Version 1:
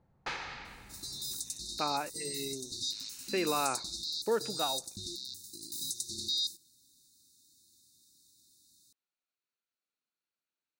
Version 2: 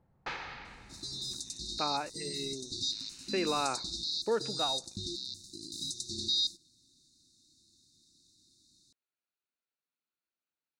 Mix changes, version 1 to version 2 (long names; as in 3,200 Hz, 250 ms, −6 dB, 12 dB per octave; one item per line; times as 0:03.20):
second sound +5.5 dB
master: add high-frequency loss of the air 95 metres